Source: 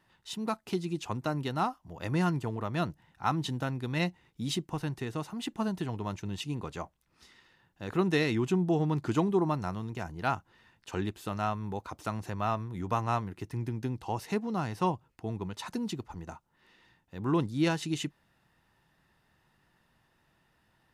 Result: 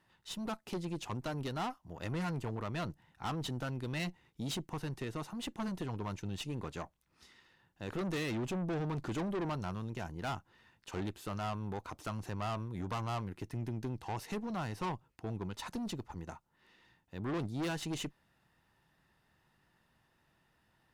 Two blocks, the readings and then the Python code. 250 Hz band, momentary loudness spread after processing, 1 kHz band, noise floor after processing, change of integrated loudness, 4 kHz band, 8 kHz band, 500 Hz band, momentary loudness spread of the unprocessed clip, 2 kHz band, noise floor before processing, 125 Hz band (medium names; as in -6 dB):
-7.0 dB, 7 LU, -7.5 dB, -74 dBFS, -6.5 dB, -4.5 dB, -3.5 dB, -7.5 dB, 11 LU, -5.5 dB, -71 dBFS, -5.5 dB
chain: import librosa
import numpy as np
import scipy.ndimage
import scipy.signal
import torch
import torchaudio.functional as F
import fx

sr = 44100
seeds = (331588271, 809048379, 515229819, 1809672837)

y = fx.tube_stage(x, sr, drive_db=33.0, bias=0.6)